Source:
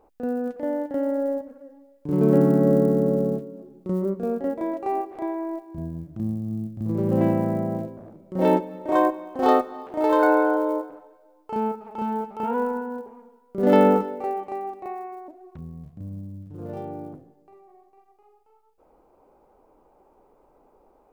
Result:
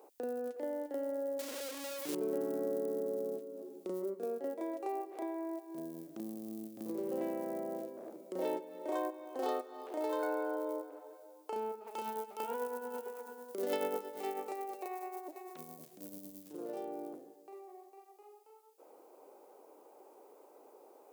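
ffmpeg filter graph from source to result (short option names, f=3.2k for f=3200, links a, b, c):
-filter_complex "[0:a]asettb=1/sr,asplit=3[a][b][c];[a]atrim=end=1.394[d];[b]atrim=start=1.39:end=2.15,asetpts=PTS-STARTPTS,afade=t=in:d=0.004:c=qsin,afade=t=out:st=0.756:d=0.004:c=qsin,aeval=exprs='val(0)+0.5*0.0355*sgn(val(0))':c=same,acrusher=bits=4:mode=log:mix=0:aa=0.000001[e];[c]atrim=start=2.146[f];[d][e]acrossfade=d=0.004:c1=hsin:c2=qsin[g];[g][f]acrossfade=d=0.004:c1=qsin:c2=hsin,asettb=1/sr,asplit=3[h][i][j];[h]atrim=end=11.874[k];[i]atrim=start=11.87:end=16.53,asetpts=PTS-STARTPTS,afade=t=in:d=0.004:c=qsin,afade=t=out:st=4.656:d=0.004:c=qsin,highshelf=f=2.2k:g=10,aecho=1:1:503:0.178,atrim=end_sample=205506,tremolo=f=9.1:d=0.49[l];[j]atrim=start=16.526[m];[k][l]acrossfade=d=0.004:c1=hsin:c2=qsin[n];[n][m]acrossfade=d=0.004:c1=qsin:c2=hsin,highpass=f=380:w=0.5412,highpass=f=380:w=1.3066,equalizer=f=1.1k:w=0.33:g=-14.5,acompressor=threshold=-55dB:ratio=2.5,volume=13dB"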